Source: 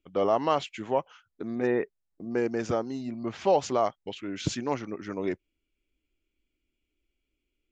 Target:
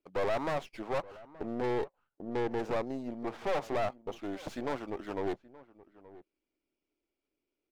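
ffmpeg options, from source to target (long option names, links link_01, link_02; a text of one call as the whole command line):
ffmpeg -i in.wav -filter_complex "[0:a]aeval=exprs='0.266*(cos(1*acos(clip(val(0)/0.266,-1,1)))-cos(1*PI/2))+0.106*(cos(5*acos(clip(val(0)/0.266,-1,1)))-cos(5*PI/2))':channel_layout=same,bandpass=frequency=850:width_type=q:width=0.94:csg=0,acrossover=split=790[link_01][link_02];[link_02]aeval=exprs='max(val(0),0)':channel_layout=same[link_03];[link_01][link_03]amix=inputs=2:normalize=0,aeval=exprs='(tanh(25.1*val(0)+0.7)-tanh(0.7))/25.1':channel_layout=same,asplit=2[link_04][link_05];[link_05]adelay=874.6,volume=-19dB,highshelf=frequency=4000:gain=-19.7[link_06];[link_04][link_06]amix=inputs=2:normalize=0" out.wav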